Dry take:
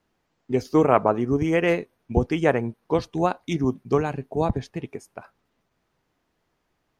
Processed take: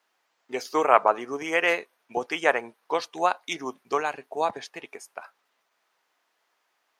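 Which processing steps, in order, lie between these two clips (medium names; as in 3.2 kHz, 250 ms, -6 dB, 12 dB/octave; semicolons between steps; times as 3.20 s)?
high-pass 800 Hz 12 dB/octave; trim +4.5 dB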